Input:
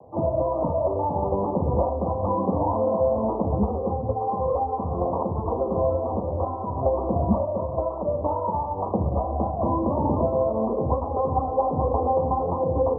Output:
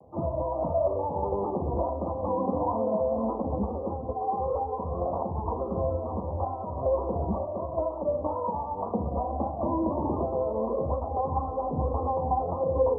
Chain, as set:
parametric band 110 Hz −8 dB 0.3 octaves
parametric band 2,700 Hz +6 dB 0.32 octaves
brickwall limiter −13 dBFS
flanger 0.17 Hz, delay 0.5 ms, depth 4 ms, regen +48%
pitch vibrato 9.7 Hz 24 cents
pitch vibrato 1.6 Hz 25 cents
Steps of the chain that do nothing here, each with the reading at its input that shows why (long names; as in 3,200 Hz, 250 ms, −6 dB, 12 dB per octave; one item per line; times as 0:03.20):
parametric band 2,700 Hz: nothing at its input above 1,200 Hz